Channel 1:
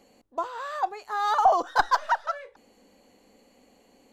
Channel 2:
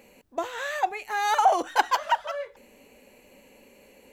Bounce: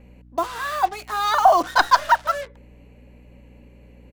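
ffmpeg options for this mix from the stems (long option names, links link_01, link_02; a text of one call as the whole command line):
ffmpeg -i stem1.wav -i stem2.wav -filter_complex "[0:a]equalizer=frequency=3300:width=0.35:gain=9,acrusher=bits=5:mix=0:aa=0.5,volume=1dB[link_01];[1:a]bass=frequency=250:gain=12,treble=frequency=4000:gain=-13,adelay=2,volume=-2dB[link_02];[link_01][link_02]amix=inputs=2:normalize=0,aeval=exprs='val(0)+0.00447*(sin(2*PI*60*n/s)+sin(2*PI*2*60*n/s)/2+sin(2*PI*3*60*n/s)/3+sin(2*PI*4*60*n/s)/4+sin(2*PI*5*60*n/s)/5)':channel_layout=same" out.wav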